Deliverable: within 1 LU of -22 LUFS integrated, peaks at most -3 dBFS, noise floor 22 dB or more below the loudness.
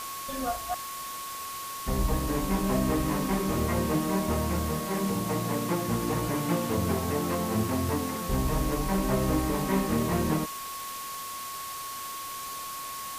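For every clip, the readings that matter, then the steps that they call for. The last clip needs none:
steady tone 1.1 kHz; tone level -37 dBFS; noise floor -38 dBFS; noise floor target -52 dBFS; loudness -29.5 LUFS; peak level -13.5 dBFS; loudness target -22.0 LUFS
-> band-stop 1.1 kHz, Q 30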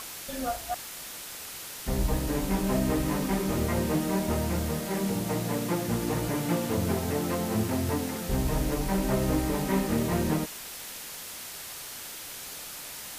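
steady tone not found; noise floor -41 dBFS; noise floor target -52 dBFS
-> noise print and reduce 11 dB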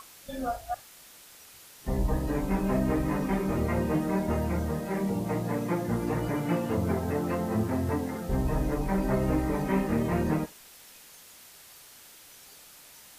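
noise floor -52 dBFS; loudness -29.5 LUFS; peak level -14.5 dBFS; loudness target -22.0 LUFS
-> trim +7.5 dB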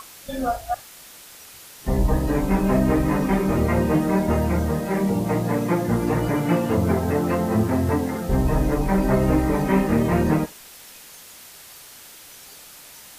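loudness -22.0 LUFS; peak level -7.0 dBFS; noise floor -44 dBFS

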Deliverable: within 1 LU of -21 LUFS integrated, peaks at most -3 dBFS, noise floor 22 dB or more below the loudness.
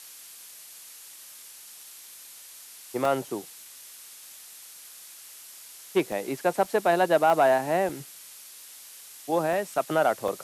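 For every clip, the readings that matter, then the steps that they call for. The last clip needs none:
dropouts 7; longest dropout 2.2 ms; noise floor -47 dBFS; noise floor target -48 dBFS; loudness -25.5 LUFS; peak level -9.0 dBFS; loudness target -21.0 LUFS
-> interpolate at 3.05/6.12/6.65/7.30/7.89/9.53/10.28 s, 2.2 ms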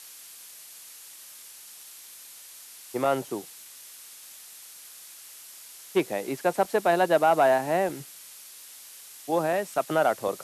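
dropouts 0; noise floor -47 dBFS; noise floor target -48 dBFS
-> noise reduction 6 dB, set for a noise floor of -47 dBFS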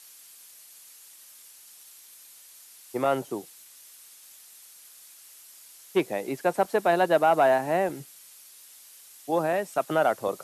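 noise floor -51 dBFS; loudness -25.5 LUFS; peak level -9.0 dBFS; loudness target -21.0 LUFS
-> trim +4.5 dB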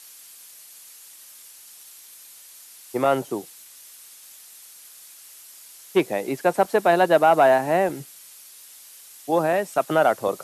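loudness -21.0 LUFS; peak level -4.5 dBFS; noise floor -47 dBFS

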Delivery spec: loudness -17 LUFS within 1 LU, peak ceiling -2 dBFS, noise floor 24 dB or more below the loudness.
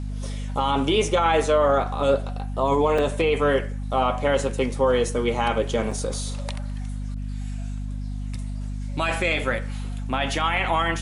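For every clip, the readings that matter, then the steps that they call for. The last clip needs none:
dropouts 2; longest dropout 4.4 ms; hum 50 Hz; highest harmonic 250 Hz; hum level -27 dBFS; loudness -24.0 LUFS; peak level -9.5 dBFS; loudness target -17.0 LUFS
-> interpolate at 2.98/5.91 s, 4.4 ms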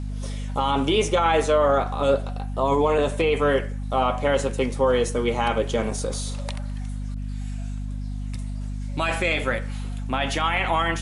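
dropouts 0; hum 50 Hz; highest harmonic 250 Hz; hum level -27 dBFS
-> hum notches 50/100/150/200/250 Hz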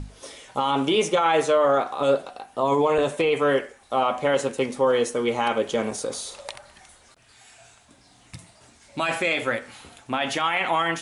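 hum not found; loudness -23.5 LUFS; peak level -9.0 dBFS; loudness target -17.0 LUFS
-> trim +6.5 dB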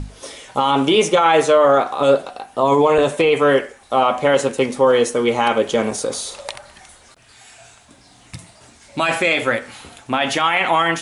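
loudness -17.0 LUFS; peak level -2.5 dBFS; noise floor -49 dBFS

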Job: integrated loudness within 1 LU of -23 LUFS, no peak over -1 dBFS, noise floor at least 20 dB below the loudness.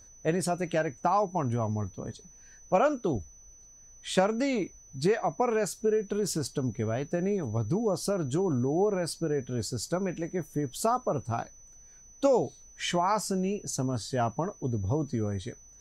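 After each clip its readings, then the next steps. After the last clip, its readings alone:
steady tone 6 kHz; tone level -52 dBFS; loudness -29.5 LUFS; peak level -9.5 dBFS; loudness target -23.0 LUFS
-> band-stop 6 kHz, Q 30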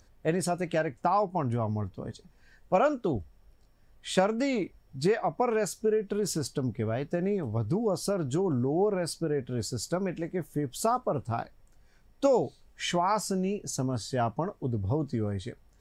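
steady tone not found; loudness -30.0 LUFS; peak level -10.0 dBFS; loudness target -23.0 LUFS
-> trim +7 dB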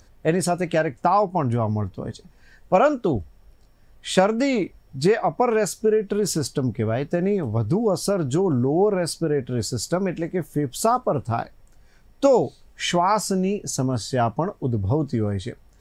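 loudness -23.0 LUFS; peak level -3.0 dBFS; noise floor -54 dBFS

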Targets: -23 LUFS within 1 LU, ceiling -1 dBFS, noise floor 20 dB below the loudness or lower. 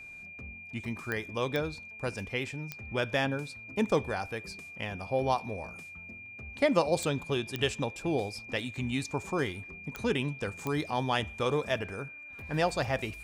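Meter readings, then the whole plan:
clicks found 7; steady tone 2.4 kHz; tone level -44 dBFS; loudness -32.5 LUFS; peak level -12.5 dBFS; loudness target -23.0 LUFS
-> de-click; band-stop 2.4 kHz, Q 30; trim +9.5 dB

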